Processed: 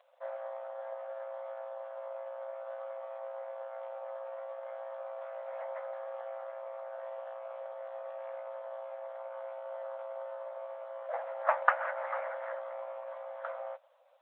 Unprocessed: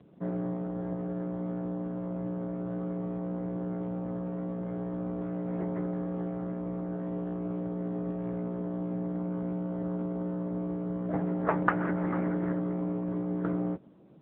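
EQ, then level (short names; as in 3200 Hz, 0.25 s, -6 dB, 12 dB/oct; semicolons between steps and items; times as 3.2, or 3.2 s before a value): brick-wall FIR high-pass 500 Hz; +1.5 dB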